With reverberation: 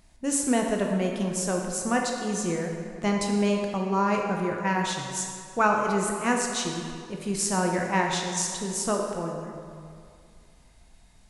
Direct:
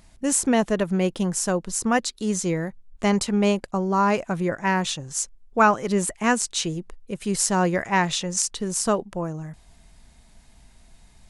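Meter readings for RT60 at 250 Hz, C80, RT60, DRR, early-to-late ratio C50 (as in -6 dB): 2.3 s, 4.0 dB, 2.3 s, 1.0 dB, 2.5 dB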